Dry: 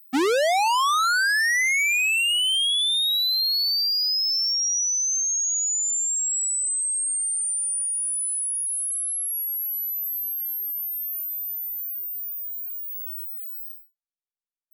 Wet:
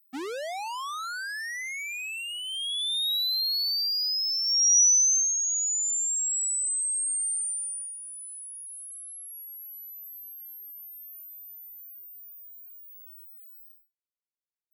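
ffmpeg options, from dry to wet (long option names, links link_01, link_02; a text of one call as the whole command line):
ffmpeg -i in.wav -af "volume=5.5dB,afade=type=in:start_time=2.44:duration=0.66:silence=0.354813,afade=type=in:start_time=4.44:duration=0.36:silence=0.316228,afade=type=out:start_time=4.8:duration=0.54:silence=0.375837,afade=type=out:start_time=7.31:duration=0.67:silence=0.266073" out.wav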